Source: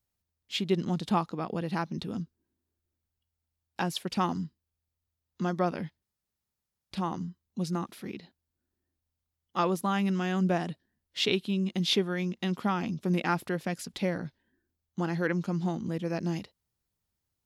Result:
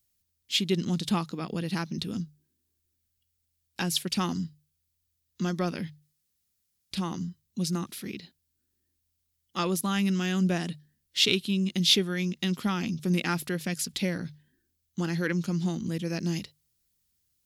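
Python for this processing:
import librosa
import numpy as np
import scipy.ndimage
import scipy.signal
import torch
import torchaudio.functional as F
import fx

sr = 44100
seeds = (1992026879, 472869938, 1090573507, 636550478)

p1 = fx.high_shelf(x, sr, hz=3100.0, db=8.5)
p2 = fx.hum_notches(p1, sr, base_hz=50, count=3)
p3 = 10.0 ** (-20.0 / 20.0) * np.tanh(p2 / 10.0 ** (-20.0 / 20.0))
p4 = p2 + F.gain(torch.from_numpy(p3), -6.5).numpy()
y = fx.peak_eq(p4, sr, hz=790.0, db=-9.5, octaves=1.7)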